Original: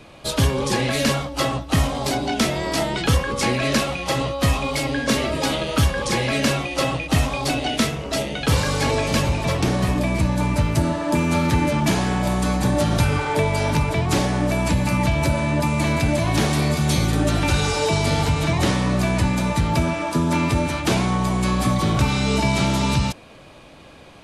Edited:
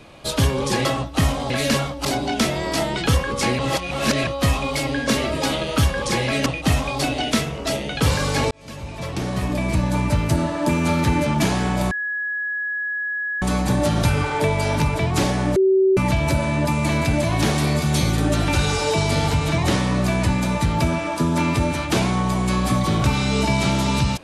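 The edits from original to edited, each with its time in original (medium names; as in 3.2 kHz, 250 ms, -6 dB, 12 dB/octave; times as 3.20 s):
0.85–1.40 s: move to 2.05 s
3.59–4.27 s: reverse
6.46–6.92 s: delete
8.97–10.27 s: fade in
12.37 s: add tone 1.68 kHz -22.5 dBFS 1.51 s
14.51–14.92 s: bleep 382 Hz -12.5 dBFS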